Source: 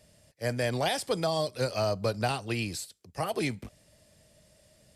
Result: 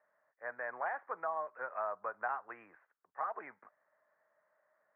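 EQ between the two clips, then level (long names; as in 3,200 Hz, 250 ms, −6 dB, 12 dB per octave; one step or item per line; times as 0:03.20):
high-pass with resonance 1,100 Hz, resonance Q 1.8
Butterworth low-pass 1,800 Hz 48 dB per octave
high-frequency loss of the air 180 metres
−3.5 dB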